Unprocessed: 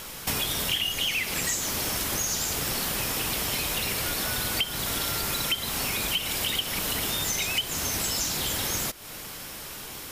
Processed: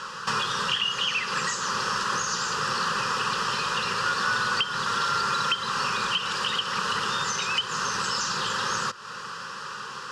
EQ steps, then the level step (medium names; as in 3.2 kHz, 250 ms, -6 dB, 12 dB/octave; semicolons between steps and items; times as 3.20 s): cabinet simulation 100–6600 Hz, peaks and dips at 100 Hz +10 dB, 540 Hz +6 dB, 4.7 kHz +6 dB; high-order bell 1.7 kHz +15 dB; static phaser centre 440 Hz, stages 8; 0.0 dB